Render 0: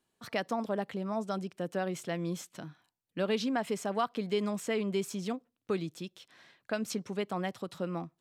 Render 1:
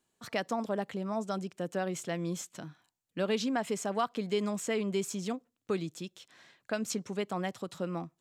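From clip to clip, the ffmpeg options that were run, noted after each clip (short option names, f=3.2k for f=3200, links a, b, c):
-af "equalizer=f=7.1k:w=2.7:g=6.5"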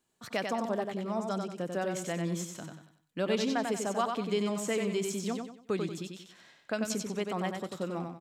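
-af "aecho=1:1:93|186|279|372:0.562|0.197|0.0689|0.0241"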